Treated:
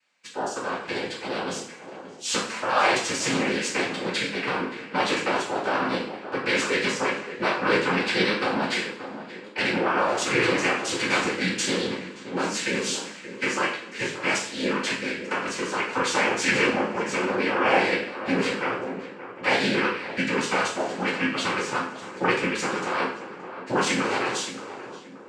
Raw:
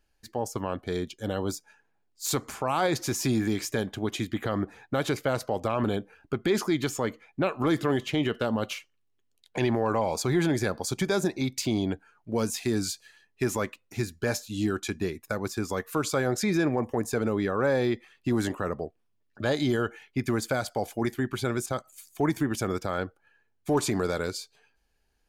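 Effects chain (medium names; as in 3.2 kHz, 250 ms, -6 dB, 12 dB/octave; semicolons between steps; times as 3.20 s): cabinet simulation 340–5800 Hz, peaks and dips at 390 Hz -9 dB, 640 Hz -10 dB, 2 kHz +8 dB; noise-vocoded speech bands 8; on a send: tape echo 576 ms, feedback 52%, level -10 dB, low-pass 1.3 kHz; on the sum: two-slope reverb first 0.51 s, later 2.1 s, from -22 dB, DRR -4 dB; trim +3 dB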